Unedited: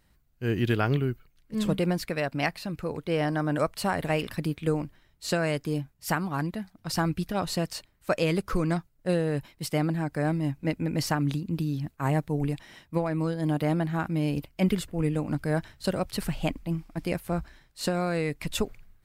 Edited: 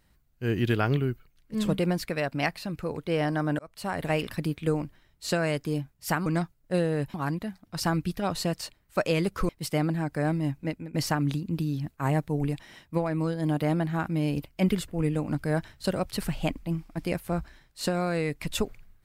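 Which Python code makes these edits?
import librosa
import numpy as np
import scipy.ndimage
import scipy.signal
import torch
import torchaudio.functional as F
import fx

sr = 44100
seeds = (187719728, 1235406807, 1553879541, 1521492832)

y = fx.edit(x, sr, fx.fade_in_span(start_s=3.59, length_s=0.5),
    fx.move(start_s=8.61, length_s=0.88, to_s=6.26),
    fx.fade_out_to(start_s=10.55, length_s=0.39, floor_db=-18.5), tone=tone)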